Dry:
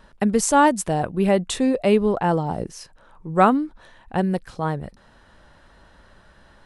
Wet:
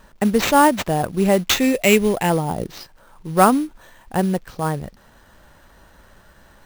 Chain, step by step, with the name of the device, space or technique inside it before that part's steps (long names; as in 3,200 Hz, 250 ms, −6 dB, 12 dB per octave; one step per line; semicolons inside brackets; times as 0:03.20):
0:01.38–0:02.30: high shelf with overshoot 1,700 Hz +7 dB, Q 3
early companding sampler (sample-rate reduction 10,000 Hz, jitter 0%; log-companded quantiser 6 bits)
level +2 dB